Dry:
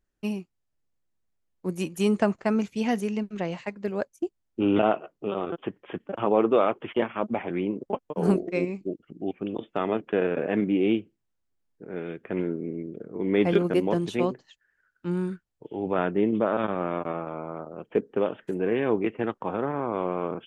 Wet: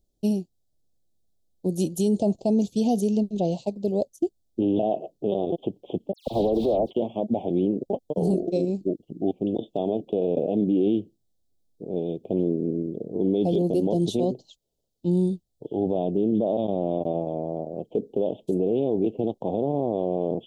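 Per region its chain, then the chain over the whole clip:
0:06.13–0:06.91: one scale factor per block 3 bits + high-frequency loss of the air 480 metres + all-pass dispersion lows, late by 137 ms, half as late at 2,600 Hz
whole clip: Chebyshev band-stop filter 710–3,600 Hz, order 3; brickwall limiter −21.5 dBFS; level +7 dB

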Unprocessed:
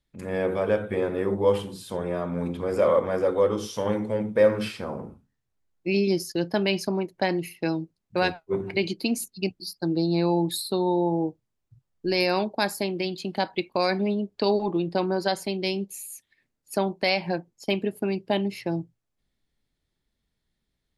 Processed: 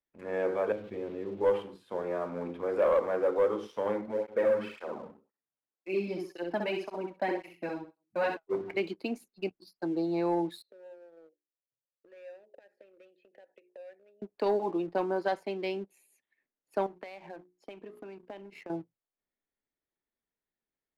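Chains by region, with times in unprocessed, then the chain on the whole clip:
0:00.72–0:01.41: spike at every zero crossing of −24.5 dBFS + drawn EQ curve 110 Hz 0 dB, 320 Hz −5 dB, 510 Hz −12 dB, 1,500 Hz −19 dB, 2,300 Hz −12 dB, 3,800 Hz −9 dB, 8,500 Hz −28 dB + envelope flattener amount 50%
0:04.01–0:08.37: repeating echo 64 ms, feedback 29%, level −5 dB + through-zero flanger with one copy inverted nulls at 1.9 Hz, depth 3 ms
0:10.62–0:14.22: mains-hum notches 60/120/180/240/300/360/420 Hz + downward compressor 16 to 1, threshold −33 dBFS + formant filter e
0:16.86–0:18.70: mains-hum notches 60/120/180/240/300/360/420 Hz + downward compressor 16 to 1, threshold −34 dBFS
whole clip: three-way crossover with the lows and the highs turned down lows −17 dB, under 270 Hz, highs −21 dB, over 2,600 Hz; leveller curve on the samples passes 1; level −6.5 dB

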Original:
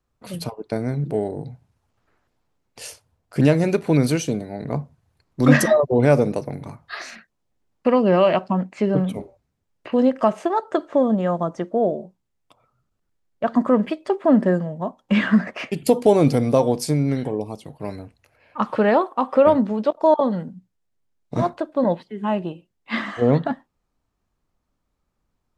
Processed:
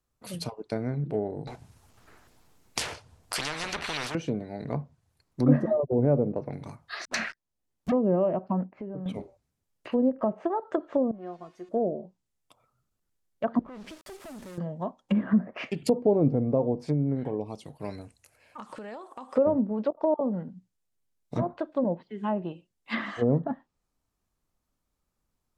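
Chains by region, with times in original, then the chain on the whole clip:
0:01.47–0:04.15: notch filter 550 Hz, Q 16 + leveller curve on the samples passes 1 + every bin compressed towards the loudest bin 10 to 1
0:07.05–0:07.92: all-pass dispersion highs, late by 92 ms, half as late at 310 Hz + leveller curve on the samples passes 5 + multiband upward and downward compressor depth 40%
0:08.64–0:09.06: downward compressor 3 to 1, threshold −31 dBFS + low-pass filter 1,000 Hz
0:11.11–0:11.69: spike at every zero crossing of −21 dBFS + low-pass filter 2,100 Hz + tuned comb filter 360 Hz, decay 0.28 s, mix 90%
0:13.59–0:14.58: downward compressor 8 to 1, threshold −26 dBFS + tube saturation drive 34 dB, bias 0.7 + bit-depth reduction 8 bits, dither none
0:18.01–0:19.36: parametric band 8,200 Hz +11.5 dB 0.97 octaves + downward compressor 8 to 1, threshold −32 dBFS
whole clip: treble cut that deepens with the level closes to 590 Hz, closed at −15.5 dBFS; high-shelf EQ 5,600 Hz +11 dB; level −6 dB

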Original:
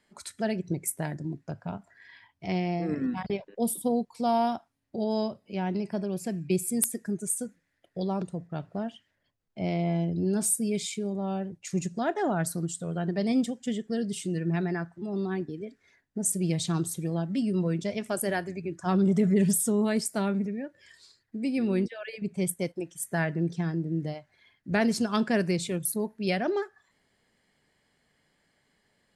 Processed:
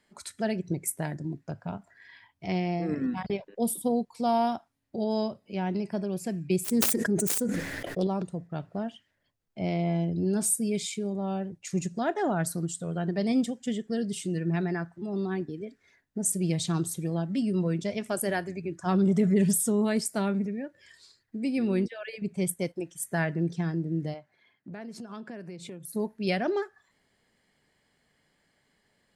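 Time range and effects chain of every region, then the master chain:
0:06.64–0:08.07: phase distortion by the signal itself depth 0.38 ms + parametric band 390 Hz +6 dB 1.8 octaves + level that may fall only so fast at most 22 dB per second
0:24.14–0:25.94: high-shelf EQ 2,600 Hz −9 dB + downward compressor 20 to 1, threshold −36 dBFS + high-pass filter 150 Hz
whole clip: no processing

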